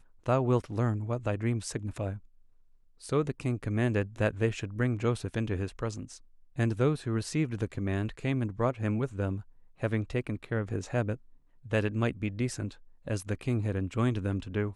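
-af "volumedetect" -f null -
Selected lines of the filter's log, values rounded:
mean_volume: -31.1 dB
max_volume: -13.1 dB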